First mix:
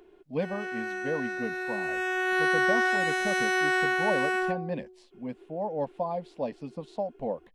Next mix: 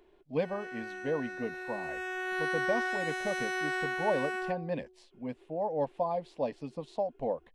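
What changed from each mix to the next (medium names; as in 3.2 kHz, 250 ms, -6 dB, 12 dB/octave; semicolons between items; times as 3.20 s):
background -7.5 dB; master: add peaking EQ 200 Hz -6.5 dB 0.46 oct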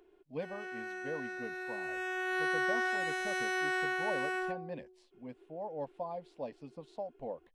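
speech -8.5 dB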